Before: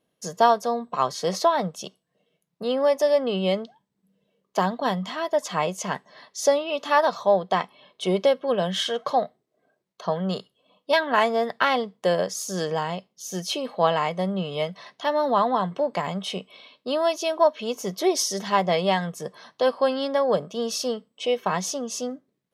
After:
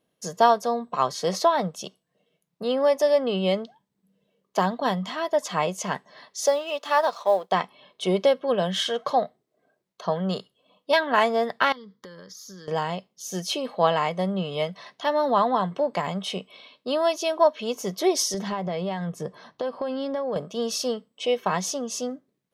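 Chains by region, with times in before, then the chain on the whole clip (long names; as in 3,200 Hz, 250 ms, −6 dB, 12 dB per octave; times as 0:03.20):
0:06.46–0:07.52: mu-law and A-law mismatch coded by A + high-pass filter 410 Hz + dynamic equaliser 2,200 Hz, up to −3 dB, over −30 dBFS, Q 0.7
0:11.72–0:12.68: phaser with its sweep stopped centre 2,600 Hz, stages 6 + downward compressor 20 to 1, threshold −39 dBFS
0:18.34–0:20.36: spectral tilt −2 dB per octave + downward compressor, threshold −25 dBFS
whole clip: no processing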